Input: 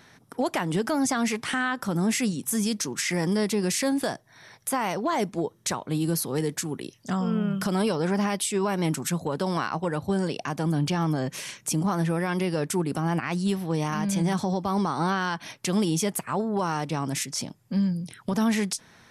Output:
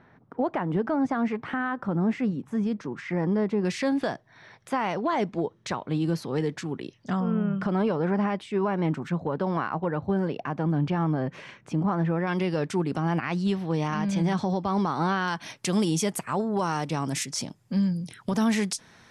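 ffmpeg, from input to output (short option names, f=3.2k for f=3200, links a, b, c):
-af "asetnsamples=n=441:p=0,asendcmd='3.65 lowpass f 3400;7.2 lowpass f 1900;12.27 lowpass f 4300;15.28 lowpass f 10000',lowpass=1.4k"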